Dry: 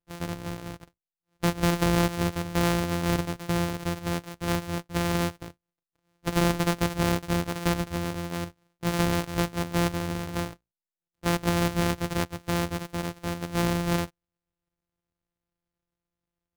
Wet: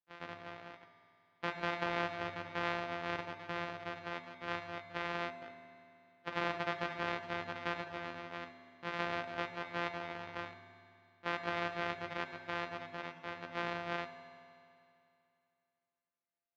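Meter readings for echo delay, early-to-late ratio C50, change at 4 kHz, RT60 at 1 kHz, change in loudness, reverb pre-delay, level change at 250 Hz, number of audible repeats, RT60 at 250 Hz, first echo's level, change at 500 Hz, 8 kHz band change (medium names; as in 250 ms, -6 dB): no echo, 4.0 dB, -11.0 dB, 2.6 s, -12.0 dB, 8 ms, -19.0 dB, no echo, 2.6 s, no echo, -11.0 dB, -27.5 dB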